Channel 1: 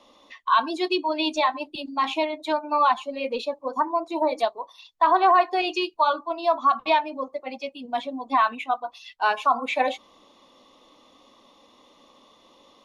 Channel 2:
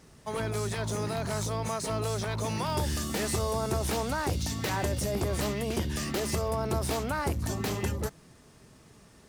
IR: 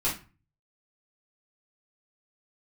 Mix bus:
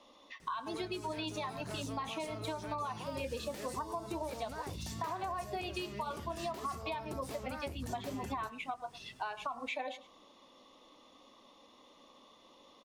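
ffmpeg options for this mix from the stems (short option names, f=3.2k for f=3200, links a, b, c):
-filter_complex "[0:a]alimiter=limit=-16.5dB:level=0:latency=1:release=247,volume=-5dB,asplit=2[a][b];[b]volume=-19.5dB[c];[1:a]acompressor=threshold=-33dB:ratio=6,flanger=delay=5.3:depth=7.9:regen=-61:speed=0.89:shape=sinusoidal,adelay=400,volume=0dB[d];[c]aecho=0:1:105:1[e];[a][d][e]amix=inputs=3:normalize=0,acompressor=threshold=-36dB:ratio=5"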